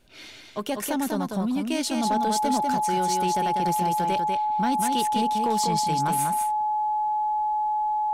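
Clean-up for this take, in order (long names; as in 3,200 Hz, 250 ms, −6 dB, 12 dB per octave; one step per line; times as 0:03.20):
clipped peaks rebuilt −16.5 dBFS
notch filter 850 Hz, Q 30
echo removal 195 ms −4.5 dB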